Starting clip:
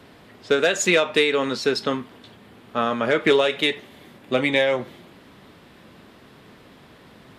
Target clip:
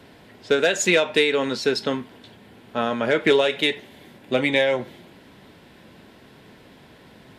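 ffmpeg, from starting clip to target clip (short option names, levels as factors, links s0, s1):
-af "bandreject=f=1200:w=6.3"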